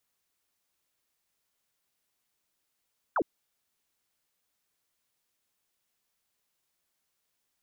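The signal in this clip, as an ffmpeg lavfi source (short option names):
-f lavfi -i "aevalsrc='0.0668*clip(t/0.002,0,1)*clip((0.06-t)/0.002,0,1)*sin(2*PI*1600*0.06/log(260/1600)*(exp(log(260/1600)*t/0.06)-1))':d=0.06:s=44100"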